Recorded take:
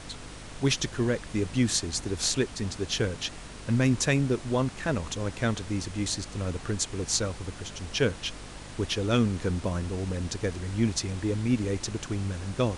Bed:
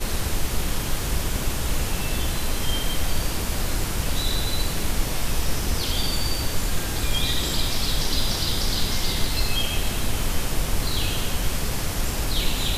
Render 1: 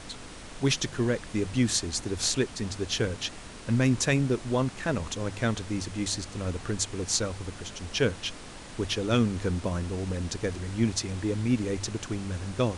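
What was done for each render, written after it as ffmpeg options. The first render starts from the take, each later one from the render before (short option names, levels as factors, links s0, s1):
-af "bandreject=f=50:t=h:w=4,bandreject=f=100:t=h:w=4,bandreject=f=150:t=h:w=4"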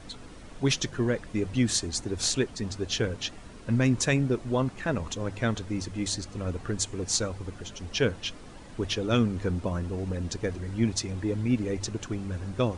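-af "afftdn=nr=9:nf=-44"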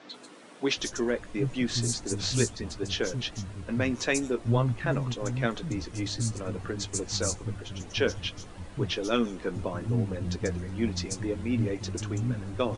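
-filter_complex "[0:a]asplit=2[s0][s1];[s1]adelay=17,volume=0.282[s2];[s0][s2]amix=inputs=2:normalize=0,acrossover=split=210|5800[s3][s4][s5];[s5]adelay=140[s6];[s3]adelay=770[s7];[s7][s4][s6]amix=inputs=3:normalize=0"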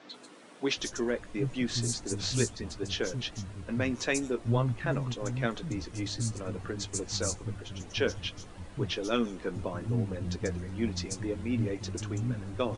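-af "volume=0.75"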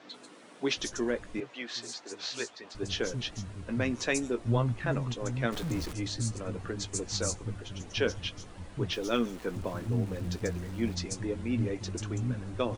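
-filter_complex "[0:a]asettb=1/sr,asplit=3[s0][s1][s2];[s0]atrim=end=1.404[s3];[s1]atrim=start=1.4:end=2.75,asetpts=PTS-STARTPTS,afade=t=in:d=0.004:c=qsin,afade=t=out:st=1.346:d=0.004:c=qsin,highpass=560,lowpass=4500[s4];[s2]atrim=start=2.746[s5];[s3][s4]acrossfade=d=0.004:c1=hsin:c2=qsin[s6];[s6][s5]acrossfade=d=0.004:c1=qsin:c2=hsin,asettb=1/sr,asplit=3[s7][s8][s9];[s7]atrim=end=5.524[s10];[s8]atrim=start=5.52:end=5.93,asetpts=PTS-STARTPTS,afade=t=in:d=0.004:c=qsin,afade=t=out:st=0.406:d=0.004:c=qsin,aeval=exprs='val(0)+0.5*0.0158*sgn(val(0))':c=same[s11];[s9]atrim=start=5.926[s12];[s10][s11]acrossfade=d=0.004:c1=hsin:c2=qsin[s13];[s13][s12]acrossfade=d=0.004:c1=qsin:c2=hsin,asettb=1/sr,asplit=3[s14][s15][s16];[s14]atrim=end=8.924[s17];[s15]atrim=start=8.92:end=10.95,asetpts=PTS-STARTPTS,afade=t=in:d=0.004:c=qsin,afade=t=out:st=2.026:d=0.004:c=qsin,aeval=exprs='val(0)*gte(abs(val(0)),0.00531)':c=same[s18];[s16]atrim=start=10.946[s19];[s17][s18]acrossfade=d=0.004:c1=hsin:c2=qsin[s20];[s20][s19]acrossfade=d=0.004:c1=qsin:c2=hsin"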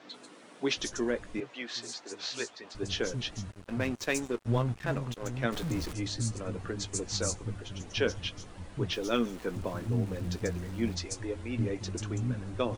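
-filter_complex "[0:a]asettb=1/sr,asplit=3[s0][s1][s2];[s0]atrim=end=3.514[s3];[s1]atrim=start=3.51:end=5.44,asetpts=PTS-STARTPTS,afade=t=in:d=0.004:c=qsin,afade=t=out:st=1.926:d=0.004:c=qsin,aeval=exprs='sgn(val(0))*max(abs(val(0))-0.00841,0)':c=same[s4];[s2]atrim=start=5.436[s5];[s3][s4]acrossfade=d=0.004:c1=hsin:c2=qsin[s6];[s6][s5]acrossfade=d=0.004:c1=qsin:c2=hsin,asettb=1/sr,asplit=3[s7][s8][s9];[s7]atrim=end=10.974[s10];[s8]atrim=start=10.97:end=11.59,asetpts=PTS-STARTPTS,afade=t=in:d=0.004:c=qsin,afade=t=out:st=0.616:d=0.004:c=qsin,equalizer=f=180:t=o:w=0.81:g=-14[s11];[s9]atrim=start=11.586[s12];[s10][s11]acrossfade=d=0.004:c1=hsin:c2=qsin[s13];[s13][s12]acrossfade=d=0.004:c1=qsin:c2=hsin"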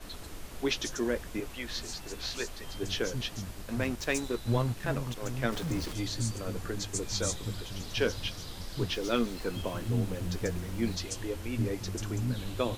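-filter_complex "[1:a]volume=0.1[s0];[0:a][s0]amix=inputs=2:normalize=0"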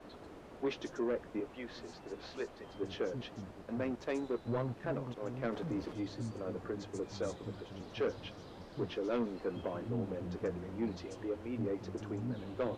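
-af "bandpass=f=470:t=q:w=0.68:csg=0,asoftclip=type=tanh:threshold=0.0422"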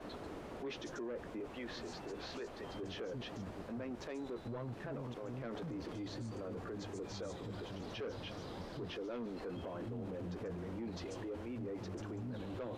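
-filter_complex "[0:a]asplit=2[s0][s1];[s1]acompressor=threshold=0.00708:ratio=6,volume=0.75[s2];[s0][s2]amix=inputs=2:normalize=0,alimiter=level_in=4.47:limit=0.0631:level=0:latency=1:release=17,volume=0.224"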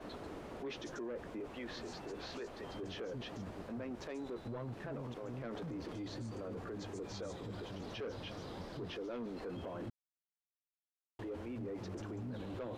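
-filter_complex "[0:a]asplit=3[s0][s1][s2];[s0]atrim=end=9.9,asetpts=PTS-STARTPTS,afade=t=out:st=9.896:d=0.004:c=hsin[s3];[s1]atrim=start=9.9:end=11.19,asetpts=PTS-STARTPTS,volume=0[s4];[s2]atrim=start=11.19,asetpts=PTS-STARTPTS,afade=t=in:d=0.004:c=hsin[s5];[s3][s4][s5]concat=n=3:v=0:a=1"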